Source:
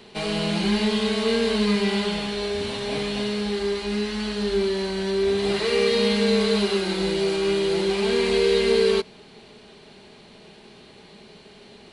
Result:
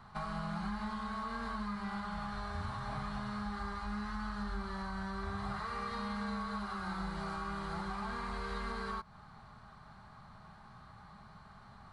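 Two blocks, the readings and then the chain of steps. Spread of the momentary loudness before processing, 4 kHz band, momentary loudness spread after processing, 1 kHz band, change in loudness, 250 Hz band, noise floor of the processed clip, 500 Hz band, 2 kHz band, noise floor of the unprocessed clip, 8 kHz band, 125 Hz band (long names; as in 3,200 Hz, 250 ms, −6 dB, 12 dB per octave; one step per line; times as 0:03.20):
7 LU, −24.0 dB, 17 LU, −4.5 dB, −17.0 dB, −16.0 dB, −56 dBFS, −27.5 dB, −13.5 dB, −49 dBFS, −22.0 dB, −10.5 dB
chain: drawn EQ curve 120 Hz 0 dB, 420 Hz −29 dB, 1,100 Hz +8 dB, 2,700 Hz −26 dB, 4,100 Hz −20 dB
downward compressor 5 to 1, threshold −37 dBFS, peak gain reduction 9.5 dB
parametric band 1,000 Hz −10.5 dB 0.26 octaves
level +3 dB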